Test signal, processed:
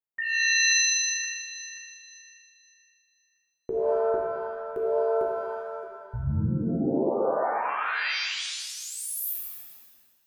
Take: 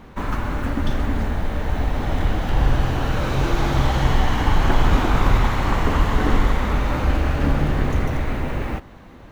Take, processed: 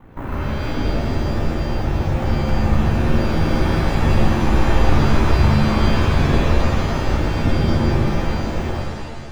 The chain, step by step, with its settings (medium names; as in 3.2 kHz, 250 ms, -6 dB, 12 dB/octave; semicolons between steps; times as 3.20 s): ring modulator 30 Hz; peaking EQ 5 kHz -14.5 dB 1.6 oct; pitch-shifted reverb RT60 1.3 s, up +7 st, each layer -2 dB, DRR -0.5 dB; trim -1 dB